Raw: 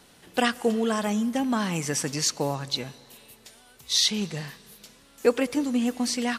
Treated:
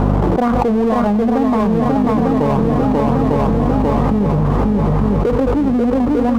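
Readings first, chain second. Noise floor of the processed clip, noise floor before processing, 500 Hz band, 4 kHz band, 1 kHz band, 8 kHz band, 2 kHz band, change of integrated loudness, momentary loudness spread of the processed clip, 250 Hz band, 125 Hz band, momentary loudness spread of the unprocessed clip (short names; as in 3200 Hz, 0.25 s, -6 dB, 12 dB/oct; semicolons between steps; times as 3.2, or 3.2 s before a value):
-16 dBFS, -56 dBFS, +12.0 dB, under -10 dB, +14.0 dB, under -15 dB, +1.5 dB, +10.5 dB, 1 LU, +14.0 dB, +19.5 dB, 8 LU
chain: steep low-pass 1200 Hz 48 dB/oct; power-law curve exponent 0.7; in parallel at +1 dB: level quantiser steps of 22 dB; on the sum: buzz 50 Hz, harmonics 5, -40 dBFS -4 dB/oct; on a send: swung echo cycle 0.899 s, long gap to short 1.5:1, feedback 48%, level -3.5 dB; on the sum: fast leveller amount 100%; gain -4 dB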